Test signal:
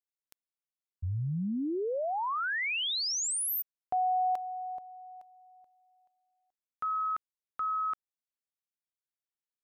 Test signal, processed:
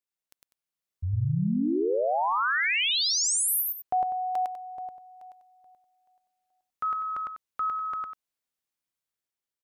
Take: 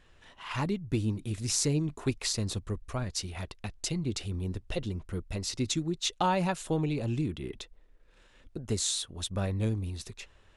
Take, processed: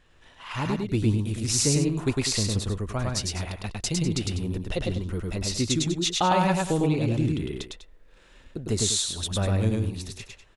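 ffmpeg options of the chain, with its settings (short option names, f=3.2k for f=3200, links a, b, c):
-af "dynaudnorm=f=160:g=9:m=4dB,aecho=1:1:105|198.3:0.794|0.251"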